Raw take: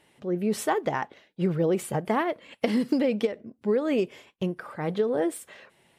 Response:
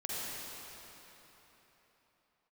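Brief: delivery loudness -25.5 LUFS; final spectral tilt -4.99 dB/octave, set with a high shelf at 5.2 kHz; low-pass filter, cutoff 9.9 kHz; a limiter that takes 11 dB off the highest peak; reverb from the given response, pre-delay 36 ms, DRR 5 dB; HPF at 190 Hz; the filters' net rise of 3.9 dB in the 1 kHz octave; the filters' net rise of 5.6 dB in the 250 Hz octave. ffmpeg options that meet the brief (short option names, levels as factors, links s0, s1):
-filter_complex "[0:a]highpass=190,lowpass=9900,equalizer=f=250:t=o:g=8.5,equalizer=f=1000:t=o:g=4.5,highshelf=f=5200:g=-4,alimiter=limit=0.133:level=0:latency=1,asplit=2[s0][s1];[1:a]atrim=start_sample=2205,adelay=36[s2];[s1][s2]afir=irnorm=-1:irlink=0,volume=0.355[s3];[s0][s3]amix=inputs=2:normalize=0,volume=1.12"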